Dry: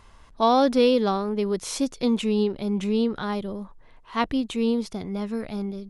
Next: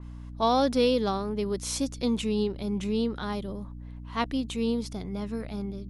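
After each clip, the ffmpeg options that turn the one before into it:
-af "aeval=exprs='val(0)+0.0178*(sin(2*PI*60*n/s)+sin(2*PI*2*60*n/s)/2+sin(2*PI*3*60*n/s)/3+sin(2*PI*4*60*n/s)/4+sin(2*PI*5*60*n/s)/5)':c=same,adynamicequalizer=threshold=0.00794:dfrequency=3600:dqfactor=0.7:tfrequency=3600:tqfactor=0.7:attack=5:release=100:ratio=0.375:range=2.5:mode=boostabove:tftype=highshelf,volume=-4.5dB"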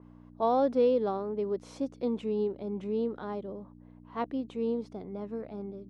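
-af "bandpass=f=490:t=q:w=0.97:csg=0"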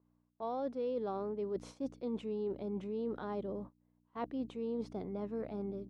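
-af "agate=range=-22dB:threshold=-46dB:ratio=16:detection=peak,areverse,acompressor=threshold=-36dB:ratio=6,areverse,volume=1dB"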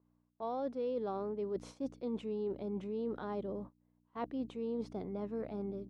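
-af anull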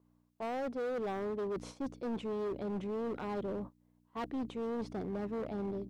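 -af "asoftclip=type=hard:threshold=-37.5dB,volume=4dB"

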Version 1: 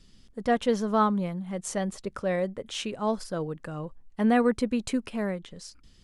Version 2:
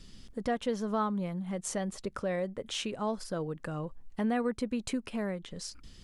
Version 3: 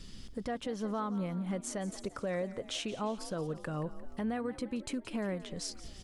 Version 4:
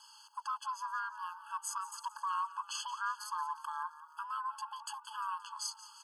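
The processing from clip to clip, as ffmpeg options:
-af "acompressor=threshold=-43dB:ratio=2,volume=5dB"
-filter_complex "[0:a]alimiter=level_in=6dB:limit=-24dB:level=0:latency=1:release=403,volume=-6dB,asplit=6[a][b][c][d][e][f];[b]adelay=175,afreqshift=47,volume=-16dB[g];[c]adelay=350,afreqshift=94,volume=-20.9dB[h];[d]adelay=525,afreqshift=141,volume=-25.8dB[i];[e]adelay=700,afreqshift=188,volume=-30.6dB[j];[f]adelay=875,afreqshift=235,volume=-35.5dB[k];[a][g][h][i][j][k]amix=inputs=6:normalize=0,volume=3dB"
-af "aeval=exprs='val(0)*sin(2*PI*560*n/s)':c=same,equalizer=f=2.5k:w=4:g=-10.5,afftfilt=real='re*eq(mod(floor(b*sr/1024/860),2),1)':imag='im*eq(mod(floor(b*sr/1024/860),2),1)':win_size=1024:overlap=0.75,volume=6.5dB"

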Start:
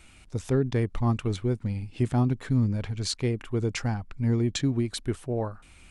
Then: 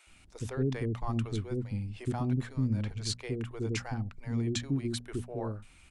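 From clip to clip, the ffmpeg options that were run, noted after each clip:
-filter_complex "[0:a]bandreject=f=60:t=h:w=6,bandreject=f=120:t=h:w=6,bandreject=f=180:t=h:w=6,bandreject=f=240:t=h:w=6,acrossover=split=480[a][b];[a]adelay=70[c];[c][b]amix=inputs=2:normalize=0,volume=-4.5dB"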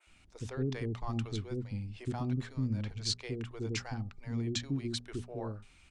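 -af "lowpass=8k,bandreject=f=404.2:t=h:w=4,bandreject=f=808.4:t=h:w=4,bandreject=f=1.2126k:t=h:w=4,adynamicequalizer=threshold=0.00178:dfrequency=4900:dqfactor=0.81:tfrequency=4900:tqfactor=0.81:attack=5:release=100:ratio=0.375:range=3.5:mode=boostabove:tftype=bell,volume=-3.5dB"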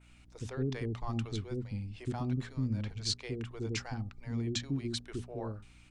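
-af "aeval=exprs='val(0)+0.00112*(sin(2*PI*60*n/s)+sin(2*PI*2*60*n/s)/2+sin(2*PI*3*60*n/s)/3+sin(2*PI*4*60*n/s)/4+sin(2*PI*5*60*n/s)/5)':c=same"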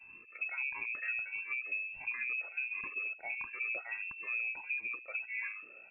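-af "afftfilt=real='re*pow(10,21/40*sin(2*PI*(1.5*log(max(b,1)*sr/1024/100)/log(2)-(-1.5)*(pts-256)/sr)))':imag='im*pow(10,21/40*sin(2*PI*(1.5*log(max(b,1)*sr/1024/100)/log(2)-(-1.5)*(pts-256)/sr)))':win_size=1024:overlap=0.75,acompressor=threshold=-35dB:ratio=5,lowpass=f=2.3k:t=q:w=0.5098,lowpass=f=2.3k:t=q:w=0.6013,lowpass=f=2.3k:t=q:w=0.9,lowpass=f=2.3k:t=q:w=2.563,afreqshift=-2700"

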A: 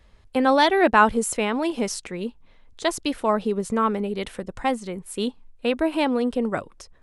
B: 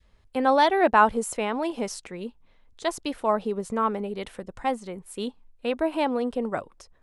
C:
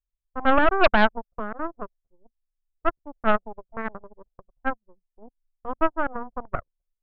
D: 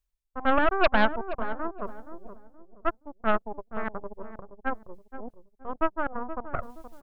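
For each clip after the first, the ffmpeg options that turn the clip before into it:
-af "adynamicequalizer=threshold=0.0316:dfrequency=770:dqfactor=0.9:tfrequency=770:tqfactor=0.9:attack=5:release=100:ratio=0.375:range=3:mode=boostabove:tftype=bell,volume=-6dB"
-af "lowpass=f=690:t=q:w=3.5,aeval=exprs='0.891*(cos(1*acos(clip(val(0)/0.891,-1,1)))-cos(1*PI/2))+0.398*(cos(6*acos(clip(val(0)/0.891,-1,1)))-cos(6*PI/2))+0.1*(cos(7*acos(clip(val(0)/0.891,-1,1)))-cos(7*PI/2))+0.0708*(cos(8*acos(clip(val(0)/0.891,-1,1)))-cos(8*PI/2))':c=same,anlmdn=63.1,volume=-8dB"
-filter_complex "[0:a]areverse,acompressor=mode=upward:threshold=-21dB:ratio=2.5,areverse,asplit=2[a][b];[b]adelay=473,lowpass=f=810:p=1,volume=-9.5dB,asplit=2[c][d];[d]adelay=473,lowpass=f=810:p=1,volume=0.36,asplit=2[e][f];[f]adelay=473,lowpass=f=810:p=1,volume=0.36,asplit=2[g][h];[h]adelay=473,lowpass=f=810:p=1,volume=0.36[i];[a][c][e][g][i]amix=inputs=5:normalize=0,volume=-4dB"

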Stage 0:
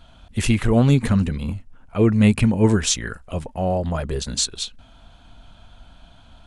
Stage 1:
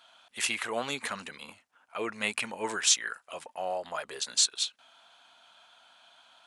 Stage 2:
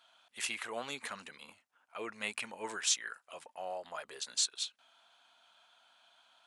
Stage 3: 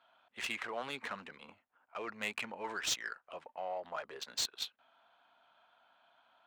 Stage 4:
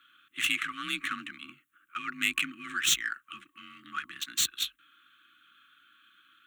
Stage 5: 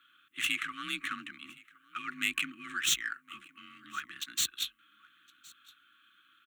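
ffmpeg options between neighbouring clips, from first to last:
-af "highpass=900,volume=-2dB"
-af "lowshelf=f=260:g=-4,volume=-7dB"
-filter_complex "[0:a]acrossover=split=600[a][b];[a]alimiter=level_in=19.5dB:limit=-24dB:level=0:latency=1,volume=-19.5dB[c];[b]asoftclip=type=tanh:threshold=-26.5dB[d];[c][d]amix=inputs=2:normalize=0,adynamicsmooth=sensitivity=7:basefreq=1.9k,volume=3dB"
-af "afreqshift=41,aexciter=amount=1.1:drive=3.6:freq=2.6k,afftfilt=real='re*(1-between(b*sr/4096,360,1100))':imag='im*(1-between(b*sr/4096,360,1100))':win_size=4096:overlap=0.75,volume=8.5dB"
-af "aecho=1:1:1064:0.0631,volume=-3dB"

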